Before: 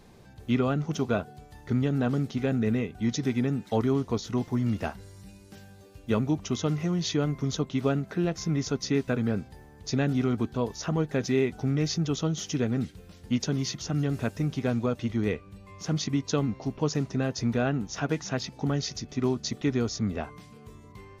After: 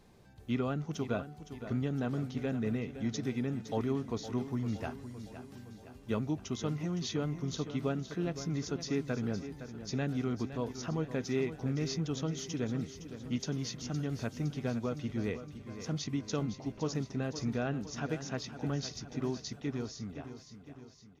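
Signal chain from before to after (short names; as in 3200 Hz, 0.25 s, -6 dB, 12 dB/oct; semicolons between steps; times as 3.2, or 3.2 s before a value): ending faded out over 2.21 s; feedback echo 0.513 s, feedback 56%, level -11.5 dB; gain -7.5 dB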